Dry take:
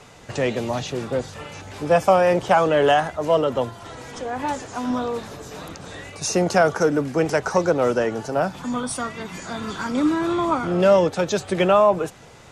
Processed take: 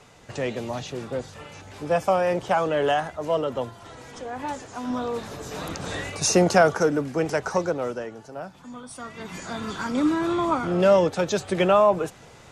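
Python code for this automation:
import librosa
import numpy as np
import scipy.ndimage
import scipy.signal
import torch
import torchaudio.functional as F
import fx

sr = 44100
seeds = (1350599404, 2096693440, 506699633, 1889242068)

y = fx.gain(x, sr, db=fx.line((4.8, -5.5), (5.93, 6.0), (7.06, -4.0), (7.56, -4.0), (8.18, -14.0), (8.87, -14.0), (9.32, -2.0)))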